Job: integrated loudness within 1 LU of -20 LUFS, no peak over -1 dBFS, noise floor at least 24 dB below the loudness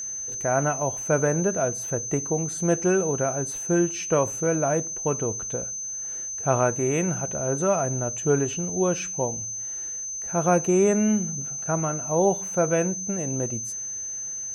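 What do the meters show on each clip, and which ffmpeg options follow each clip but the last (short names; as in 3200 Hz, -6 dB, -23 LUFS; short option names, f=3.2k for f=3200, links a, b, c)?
steady tone 6200 Hz; tone level -30 dBFS; loudness -24.5 LUFS; peak -8.0 dBFS; loudness target -20.0 LUFS
-> -af "bandreject=f=6.2k:w=30"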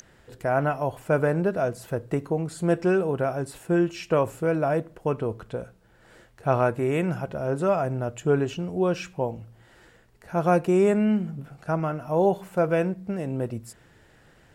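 steady tone none; loudness -25.5 LUFS; peak -8.5 dBFS; loudness target -20.0 LUFS
-> -af "volume=5.5dB"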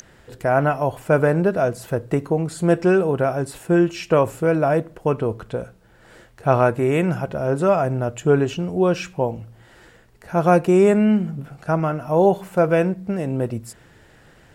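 loudness -20.0 LUFS; peak -3.0 dBFS; noise floor -52 dBFS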